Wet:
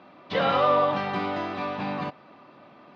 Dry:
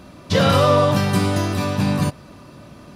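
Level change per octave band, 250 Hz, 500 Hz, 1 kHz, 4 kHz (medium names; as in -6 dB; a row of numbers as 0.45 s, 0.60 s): -12.0 dB, -6.5 dB, -3.0 dB, -10.0 dB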